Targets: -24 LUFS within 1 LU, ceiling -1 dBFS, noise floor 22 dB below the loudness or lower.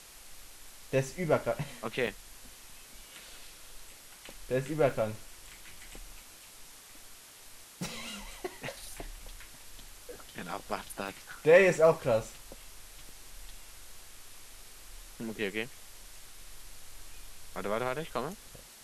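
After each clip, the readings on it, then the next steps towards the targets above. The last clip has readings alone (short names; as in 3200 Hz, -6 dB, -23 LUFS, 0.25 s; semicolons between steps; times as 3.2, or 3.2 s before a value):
dropouts 5; longest dropout 1.2 ms; noise floor -53 dBFS; noise floor target -54 dBFS; loudness -31.5 LUFS; peak -10.0 dBFS; loudness target -24.0 LUFS
-> interpolate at 2.07/4.91/8.07/11.08/13.09, 1.2 ms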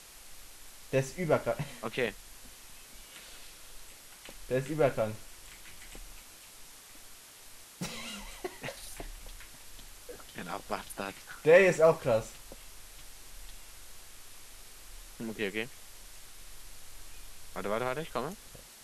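dropouts 0; noise floor -53 dBFS; noise floor target -54 dBFS
-> noise print and reduce 6 dB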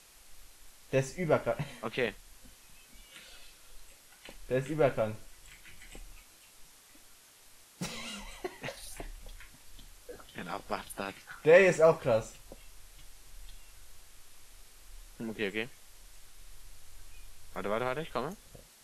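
noise floor -59 dBFS; loudness -31.0 LUFS; peak -10.0 dBFS; loudness target -24.0 LUFS
-> gain +7 dB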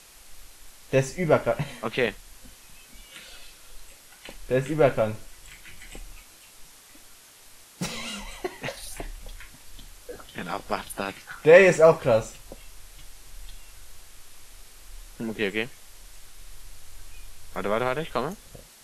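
loudness -24.0 LUFS; peak -3.0 dBFS; noise floor -52 dBFS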